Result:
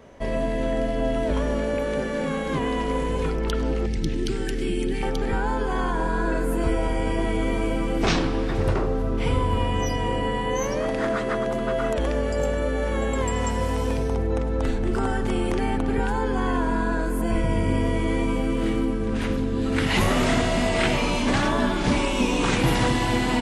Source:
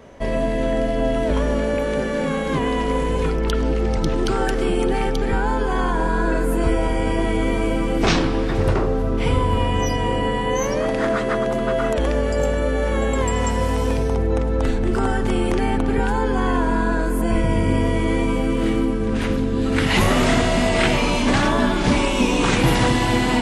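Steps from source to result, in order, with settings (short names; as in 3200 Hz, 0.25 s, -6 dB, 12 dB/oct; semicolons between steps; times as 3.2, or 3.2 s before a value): 3.86–5.03 band shelf 850 Hz -15 dB; feedback echo 99 ms, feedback 41%, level -22 dB; gain -4 dB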